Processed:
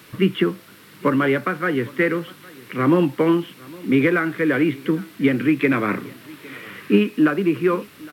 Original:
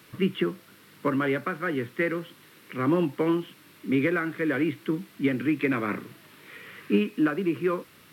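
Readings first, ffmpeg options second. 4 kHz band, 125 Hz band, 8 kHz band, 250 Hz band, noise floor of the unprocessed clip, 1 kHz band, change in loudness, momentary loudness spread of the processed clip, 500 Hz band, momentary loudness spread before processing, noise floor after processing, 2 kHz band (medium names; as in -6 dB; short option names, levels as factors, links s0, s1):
+7.0 dB, +7.0 dB, no reading, +7.0 dB, -54 dBFS, +7.0 dB, +7.0 dB, 18 LU, +7.0 dB, 18 LU, -47 dBFS, +7.0 dB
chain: -af "aecho=1:1:810:0.075,volume=2.24"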